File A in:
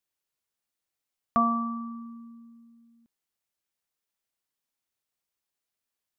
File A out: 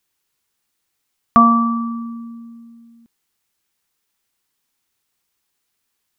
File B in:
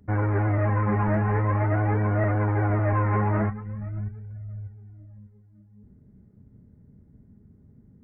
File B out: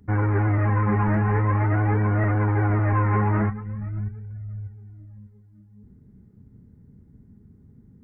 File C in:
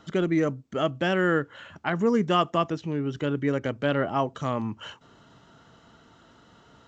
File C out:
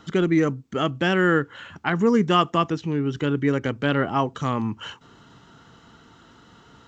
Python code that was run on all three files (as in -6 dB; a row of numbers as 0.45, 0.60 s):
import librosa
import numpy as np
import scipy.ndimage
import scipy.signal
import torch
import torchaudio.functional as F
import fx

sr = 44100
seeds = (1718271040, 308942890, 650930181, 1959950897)

y = fx.peak_eq(x, sr, hz=610.0, db=-8.0, octaves=0.38)
y = y * 10.0 ** (-24 / 20.0) / np.sqrt(np.mean(np.square(y)))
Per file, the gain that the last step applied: +13.5, +2.5, +4.5 dB